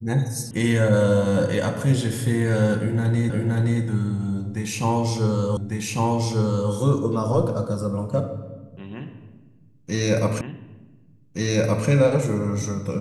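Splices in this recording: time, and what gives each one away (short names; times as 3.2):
0.51 sound cut off
3.3 repeat of the last 0.52 s
5.57 repeat of the last 1.15 s
10.41 repeat of the last 1.47 s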